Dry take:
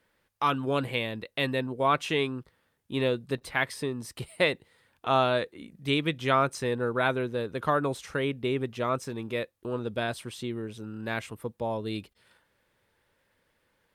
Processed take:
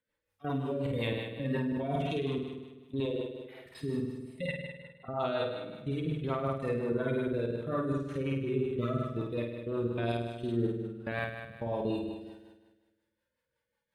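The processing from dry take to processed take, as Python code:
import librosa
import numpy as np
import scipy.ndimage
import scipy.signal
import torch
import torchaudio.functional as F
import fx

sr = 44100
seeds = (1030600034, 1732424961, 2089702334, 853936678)

y = fx.hpss_only(x, sr, part='harmonic')
y = fx.lowpass(y, sr, hz=fx.line((4.46, 2900.0), (5.19, 1200.0)), slope=24, at=(4.46, 5.19), fade=0.02)
y = fx.level_steps(y, sr, step_db=18)
y = fx.highpass(y, sr, hz=340.0, slope=24, at=(3.0, 3.66))
y = fx.room_flutter(y, sr, wall_m=8.8, rt60_s=1.3)
y = fx.rotary(y, sr, hz=5.5)
y = fx.sustainer(y, sr, db_per_s=23.0, at=(1.38, 2.17))
y = y * librosa.db_to_amplitude(4.0)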